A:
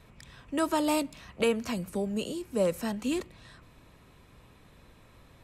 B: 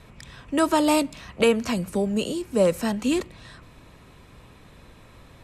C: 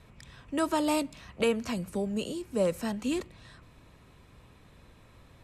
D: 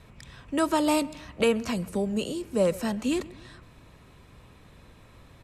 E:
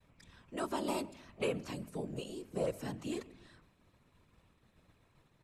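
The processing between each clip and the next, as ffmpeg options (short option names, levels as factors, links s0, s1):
-af "lowpass=12000,volume=2.24"
-af "equalizer=f=84:t=o:w=1.5:g=2.5,volume=0.422"
-filter_complex "[0:a]asplit=2[s0][s1];[s1]adelay=133,lowpass=f=2100:p=1,volume=0.1,asplit=2[s2][s3];[s3]adelay=133,lowpass=f=2100:p=1,volume=0.46,asplit=2[s4][s5];[s5]adelay=133,lowpass=f=2100:p=1,volume=0.46[s6];[s0][s2][s4][s6]amix=inputs=4:normalize=0,volume=1.5"
-af "afftfilt=real='hypot(re,im)*cos(2*PI*random(0))':imag='hypot(re,im)*sin(2*PI*random(1))':win_size=512:overlap=0.75,agate=range=0.0224:threshold=0.002:ratio=3:detection=peak,bandreject=f=51.95:t=h:w=4,bandreject=f=103.9:t=h:w=4,bandreject=f=155.85:t=h:w=4,bandreject=f=207.8:t=h:w=4,bandreject=f=259.75:t=h:w=4,volume=0.501"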